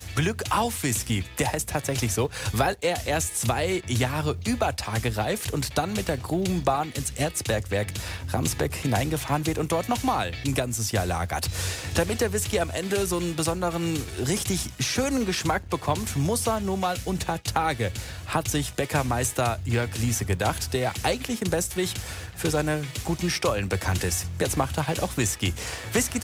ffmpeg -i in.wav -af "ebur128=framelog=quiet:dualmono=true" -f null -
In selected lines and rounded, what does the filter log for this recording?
Integrated loudness:
  I:         -23.4 LUFS
  Threshold: -33.4 LUFS
Loudness range:
  LRA:         1.0 LU
  Threshold: -43.4 LUFS
  LRA low:   -23.9 LUFS
  LRA high:  -22.9 LUFS